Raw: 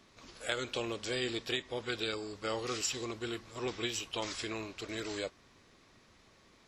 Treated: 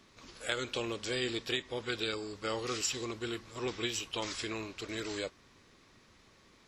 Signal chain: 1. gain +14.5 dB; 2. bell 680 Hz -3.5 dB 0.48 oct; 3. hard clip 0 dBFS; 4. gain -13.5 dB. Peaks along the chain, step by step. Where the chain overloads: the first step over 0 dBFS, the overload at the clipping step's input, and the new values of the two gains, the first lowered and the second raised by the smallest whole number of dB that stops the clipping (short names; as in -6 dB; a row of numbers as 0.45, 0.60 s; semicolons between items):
-3.5, -3.5, -3.5, -17.0 dBFS; no overload